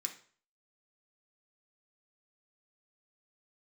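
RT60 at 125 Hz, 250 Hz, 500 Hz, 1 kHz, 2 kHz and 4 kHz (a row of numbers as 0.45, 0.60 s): 0.50, 0.40, 0.45, 0.45, 0.45, 0.40 s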